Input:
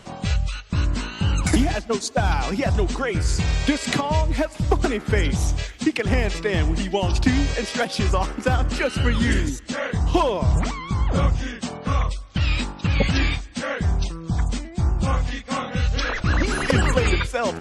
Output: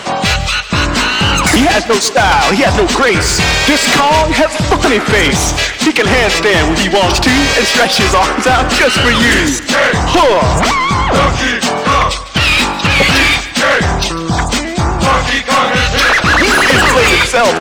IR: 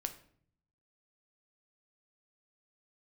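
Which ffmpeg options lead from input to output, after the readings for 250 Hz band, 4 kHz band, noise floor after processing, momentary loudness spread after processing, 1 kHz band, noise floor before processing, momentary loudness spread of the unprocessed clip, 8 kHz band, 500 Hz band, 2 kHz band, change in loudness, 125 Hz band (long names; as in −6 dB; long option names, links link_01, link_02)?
+10.0 dB, +18.5 dB, −21 dBFS, 5 LU, +16.5 dB, −39 dBFS, 6 LU, +17.0 dB, +13.0 dB, +17.5 dB, +13.0 dB, +5.0 dB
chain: -filter_complex "[0:a]asplit=2[link_01][link_02];[link_02]highpass=frequency=720:poles=1,volume=27dB,asoftclip=type=tanh:threshold=-5dB[link_03];[link_01][link_03]amix=inputs=2:normalize=0,lowpass=frequency=5200:poles=1,volume=-6dB,aecho=1:1:149:0.158,volume=4dB"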